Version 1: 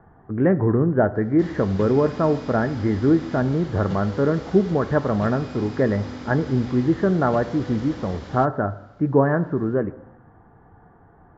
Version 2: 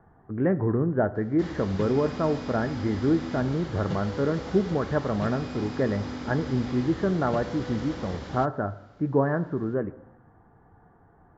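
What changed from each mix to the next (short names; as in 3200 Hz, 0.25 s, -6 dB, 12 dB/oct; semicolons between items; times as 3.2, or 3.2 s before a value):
speech -5.5 dB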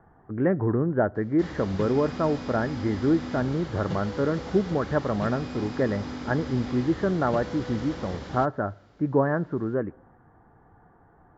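speech: send -8.5 dB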